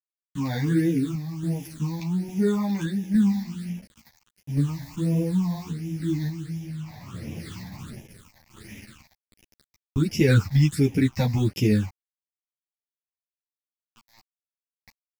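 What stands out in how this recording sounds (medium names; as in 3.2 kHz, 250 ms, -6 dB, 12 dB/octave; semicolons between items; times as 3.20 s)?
a quantiser's noise floor 8-bit, dither none; phasing stages 8, 1.4 Hz, lowest notch 380–1300 Hz; random-step tremolo 3.5 Hz; a shimmering, thickened sound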